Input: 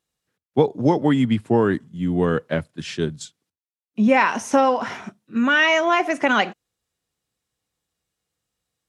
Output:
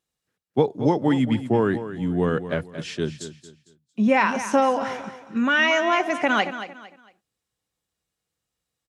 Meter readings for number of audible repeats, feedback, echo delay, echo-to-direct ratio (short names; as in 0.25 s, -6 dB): 3, 30%, 0.227 s, -11.5 dB